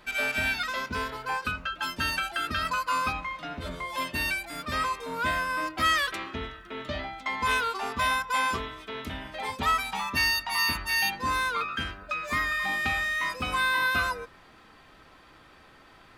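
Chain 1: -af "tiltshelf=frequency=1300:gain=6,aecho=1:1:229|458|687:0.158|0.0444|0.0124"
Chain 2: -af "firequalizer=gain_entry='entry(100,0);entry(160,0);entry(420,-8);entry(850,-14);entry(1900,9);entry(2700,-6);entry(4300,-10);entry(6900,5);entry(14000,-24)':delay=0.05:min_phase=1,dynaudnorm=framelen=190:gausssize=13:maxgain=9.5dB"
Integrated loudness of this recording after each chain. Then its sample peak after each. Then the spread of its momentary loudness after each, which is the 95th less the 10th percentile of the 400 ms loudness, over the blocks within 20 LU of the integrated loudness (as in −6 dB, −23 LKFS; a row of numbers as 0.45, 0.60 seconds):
−28.5, −17.0 LKFS; −14.0, −4.0 dBFS; 8, 16 LU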